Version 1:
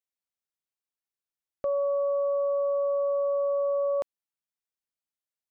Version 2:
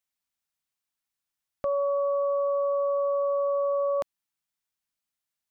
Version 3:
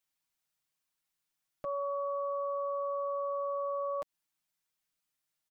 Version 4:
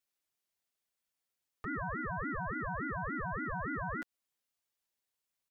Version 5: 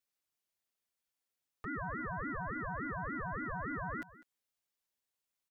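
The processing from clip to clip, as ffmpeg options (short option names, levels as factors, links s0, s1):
-af "equalizer=f=450:t=o:w=0.78:g=-10,volume=2"
-af "aecho=1:1:6.4:0.67,alimiter=level_in=1.78:limit=0.0631:level=0:latency=1:release=127,volume=0.562"
-af "aeval=exprs='val(0)*sin(2*PI*630*n/s+630*0.4/3.5*sin(2*PI*3.5*n/s))':c=same"
-af "aecho=1:1:201:0.126,volume=0.794"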